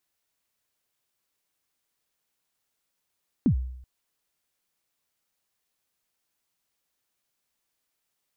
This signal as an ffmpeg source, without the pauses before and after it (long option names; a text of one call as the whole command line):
ffmpeg -f lavfi -i "aevalsrc='0.178*pow(10,-3*t/0.75)*sin(2*PI*(300*0.091/log(63/300)*(exp(log(63/300)*min(t,0.091)/0.091)-1)+63*max(t-0.091,0)))':duration=0.38:sample_rate=44100" out.wav